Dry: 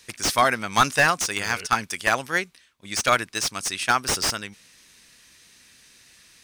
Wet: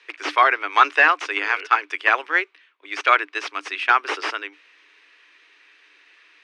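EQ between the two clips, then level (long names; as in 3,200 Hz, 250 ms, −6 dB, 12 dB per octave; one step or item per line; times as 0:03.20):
Chebyshev high-pass with heavy ripple 290 Hz, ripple 6 dB
low-pass with resonance 2,600 Hz, resonance Q 2
+3.5 dB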